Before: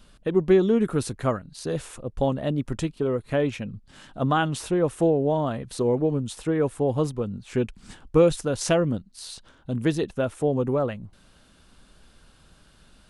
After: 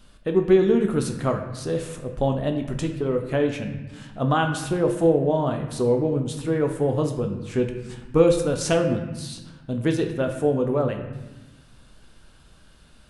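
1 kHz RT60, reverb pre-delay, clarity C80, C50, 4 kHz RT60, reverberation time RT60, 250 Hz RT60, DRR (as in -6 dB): 1.1 s, 16 ms, 9.0 dB, 7.0 dB, 0.85 s, 1.1 s, 1.5 s, 4.0 dB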